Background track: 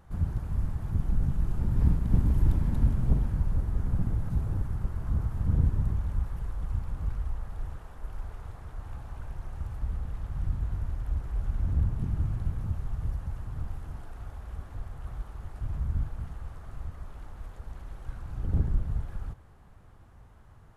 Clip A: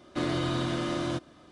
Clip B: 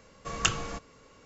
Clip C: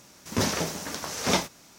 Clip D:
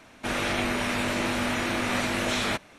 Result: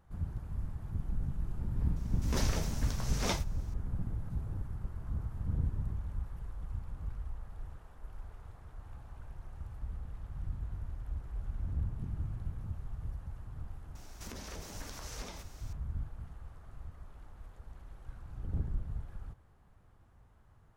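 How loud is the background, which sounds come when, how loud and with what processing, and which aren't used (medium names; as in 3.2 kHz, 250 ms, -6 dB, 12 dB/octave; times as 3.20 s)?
background track -8.5 dB
1.96 s: add C -10 dB
13.95 s: add C -5.5 dB + compression 12:1, threshold -37 dBFS
not used: A, B, D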